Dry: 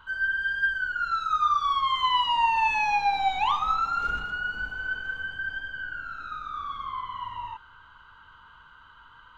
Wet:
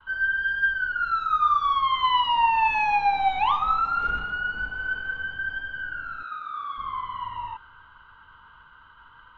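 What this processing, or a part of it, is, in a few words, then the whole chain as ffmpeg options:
hearing-loss simulation: -filter_complex "[0:a]lowpass=3.1k,agate=range=-33dB:threshold=-50dB:ratio=3:detection=peak,asettb=1/sr,asplit=3[a][b][c];[a]atrim=end=6.234[d];[b]atrim=start=6.23:end=6.78,asetpts=PTS-STARTPTS,afade=t=in:d=0.004:c=qsin,afade=t=out:st=0.546:d=0.004:c=qsin,highpass=f=650:p=1[e];[c]atrim=start=6.776[f];[d][e]acrossfade=d=0.004:c1=hsin:c2=qsin[g];[g][f]acrossfade=d=0.004:c1=qsin:c2=hsin,volume=2.5dB"

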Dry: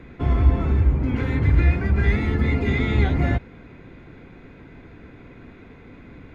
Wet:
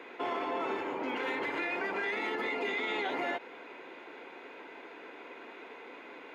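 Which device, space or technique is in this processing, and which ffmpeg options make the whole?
laptop speaker: -af "highpass=f=380:w=0.5412,highpass=f=380:w=1.3066,equalizer=f=910:t=o:w=0.33:g=7,equalizer=f=2.9k:t=o:w=0.33:g=6.5,alimiter=level_in=3dB:limit=-24dB:level=0:latency=1:release=66,volume=-3dB,volume=1.5dB"

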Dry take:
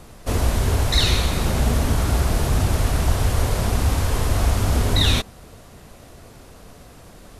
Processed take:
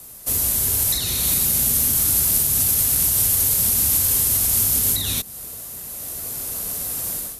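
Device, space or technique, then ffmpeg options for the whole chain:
FM broadcast chain: -filter_complex "[0:a]highpass=f=53:p=1,dynaudnorm=f=650:g=3:m=16dB,acrossover=split=98|300|1900[a][b][c][d];[a]acompressor=threshold=-26dB:ratio=4[e];[b]acompressor=threshold=-21dB:ratio=4[f];[c]acompressor=threshold=-32dB:ratio=4[g];[d]acompressor=threshold=-25dB:ratio=4[h];[e][f][g][h]amix=inputs=4:normalize=0,aemphasis=mode=production:type=50fm,alimiter=limit=-10dB:level=0:latency=1:release=124,asoftclip=type=hard:threshold=-11.5dB,lowpass=f=15k:w=0.5412,lowpass=f=15k:w=1.3066,aemphasis=mode=production:type=50fm,volume=-7.5dB"

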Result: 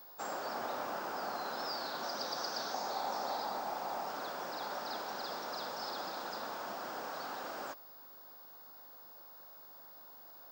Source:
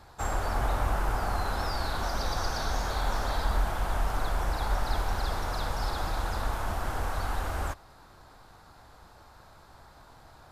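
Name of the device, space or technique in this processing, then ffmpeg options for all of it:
old television with a line whistle: -filter_complex "[0:a]asettb=1/sr,asplit=3[a][b][c];[a]atrim=end=2.744[d];[b]atrim=start=2.74:end=4.09,asetpts=PTS-STARTPTS,afade=t=in:d=0.004:c=qsin,afade=t=out:st=1.346:d=0.004:c=qsin,equalizer=f=800:t=o:w=0.33:g=7,equalizer=f=1.6k:t=o:w=0.33:g=-4,equalizer=f=3.15k:t=o:w=0.33:g=-5[e];[c]atrim=start=4.086[f];[d][e]acrossfade=d=0.004:c1=hsin:c2=qsin[g];[g][f]acrossfade=d=0.004:c1=qsin:c2=hsin,highpass=f=210:w=0.5412,highpass=f=210:w=1.3066,equalizer=f=560:t=q:w=4:g=4,equalizer=f=2.1k:t=q:w=4:g=-3,equalizer=f=5k:t=q:w=4:g=8,lowpass=f=7.6k:w=0.5412,lowpass=f=7.6k:w=1.3066,aeval=exprs='val(0)+0.00562*sin(2*PI*15625*n/s)':c=same,volume=-7dB"

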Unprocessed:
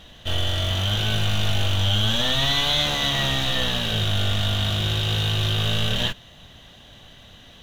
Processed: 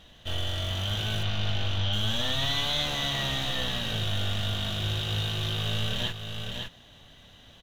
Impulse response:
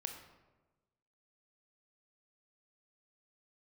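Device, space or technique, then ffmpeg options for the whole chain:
ducked delay: -filter_complex "[0:a]asettb=1/sr,asplit=3[a][b][c];[a]atrim=end=1.234[d];[b]atrim=start=1.23:end=1.93,asetpts=PTS-STARTPTS,afade=t=in:d=0.004:c=qsin,afade=t=out:st=0.696:d=0.004:c=qsin,lowpass=f=5.5k:w=0.5412,lowpass=f=5.5k:w=1.3066[e];[c]atrim=start=1.926[f];[d][e]acrossfade=d=0.004:c1=hsin:c2=qsin[g];[g][f]acrossfade=d=0.004:c1=qsin:c2=hsin,asplit=3[h][i][j];[i]adelay=557,volume=-5dB[k];[j]apad=whole_len=360751[l];[k][l]sidechaincompress=threshold=-24dB:ratio=8:attack=40:release=682[m];[h][m]amix=inputs=2:normalize=0,volume=-7dB"

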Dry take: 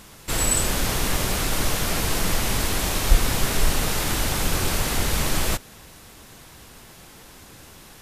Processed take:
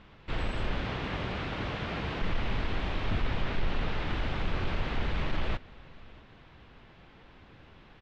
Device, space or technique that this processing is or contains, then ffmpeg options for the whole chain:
synthesiser wavefolder: -filter_complex "[0:a]asettb=1/sr,asplit=3[a][b][c];[a]atrim=end=0.804[d];[b]atrim=start=0.8:end=2.22,asetpts=PTS-STARTPTS,afade=t=in:d=0.004:c=qsin,afade=t=out:st=1.416:d=0.004:c=qsin,highpass=66[e];[c]atrim=start=2.216[f];[d][e]acrossfade=d=0.004:c1=hsin:c2=qsin[g];[g][f]acrossfade=d=0.004:c1=qsin:c2=hsin,aeval=exprs='0.168*(abs(mod(val(0)/0.168+3,4)-2)-1)':c=same,lowpass=f=3.3k:w=0.5412,lowpass=f=3.3k:w=1.3066,lowshelf=f=140:g=3.5,asettb=1/sr,asplit=3[h][i][j];[h]atrim=end=3.244[k];[i]atrim=start=3.24:end=4.1,asetpts=PTS-STARTPTS,afade=t=in:d=0.004:c=qsin,afade=t=out:st=0.856:d=0.004:c=qsin,lowpass=8.9k[l];[j]atrim=start=4.096[m];[k][l]acrossfade=d=0.004:c1=hsin:c2=qsin[n];[n][m]acrossfade=d=0.004:c1=qsin:c2=hsin,aecho=1:1:638:0.0708,volume=-8dB"

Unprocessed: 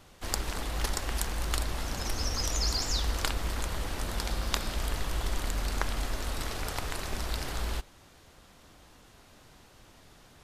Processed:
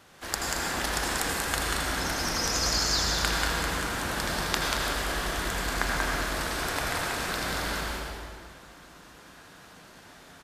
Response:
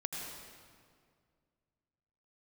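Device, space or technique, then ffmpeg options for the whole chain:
stadium PA: -filter_complex "[0:a]highpass=f=180:p=1,equalizer=f=1.6k:t=o:w=0.57:g=5.5,aecho=1:1:186.6|224.5:0.631|0.282[a];[1:a]atrim=start_sample=2205[b];[a][b]afir=irnorm=-1:irlink=0,volume=3dB"

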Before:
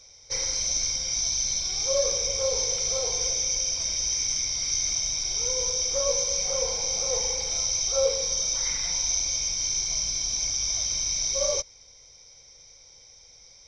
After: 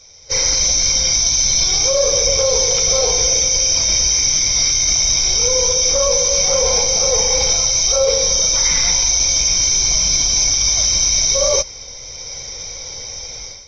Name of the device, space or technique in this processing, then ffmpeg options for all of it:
low-bitrate web radio: -af "dynaudnorm=f=280:g=3:m=16dB,alimiter=limit=-13dB:level=0:latency=1:release=32,volume=6dB" -ar 32000 -c:a aac -b:a 24k

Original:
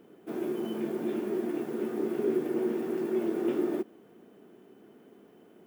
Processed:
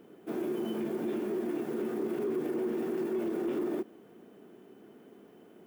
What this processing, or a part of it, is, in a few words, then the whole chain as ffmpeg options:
soft clipper into limiter: -af "asoftclip=type=tanh:threshold=-20dB,alimiter=level_in=3dB:limit=-24dB:level=0:latency=1:release=31,volume=-3dB,volume=1dB"

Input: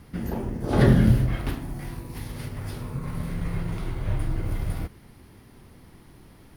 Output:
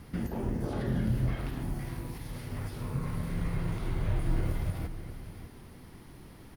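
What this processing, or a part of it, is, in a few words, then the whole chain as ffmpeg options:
de-esser from a sidechain: -filter_complex "[0:a]asplit=2[a][b];[b]highpass=f=6.5k:p=1,apad=whole_len=289534[c];[a][c]sidechaincompress=threshold=-51dB:ratio=16:attack=3.2:release=82,asettb=1/sr,asplit=3[d][e][f];[d]atrim=end=4.134[g];[e]atrim=start=4.13:end=4.58,asetpts=PTS-STARTPTS,afade=t=in:d=0.004:c=qsin,afade=t=out:st=0.446:d=0.004:c=qsin,asplit=2[h][i];[i]adelay=26,volume=-4dB[j];[h][j]amix=inputs=2:normalize=0,atrim=end_sample=19845[k];[f]atrim=start=4.576[l];[g][k]acrossfade=d=0.004:c1=hsin:c2=qsin[m];[m][l]acrossfade=d=0.004:c1=qsin:c2=hsin,aecho=1:1:603:0.237"

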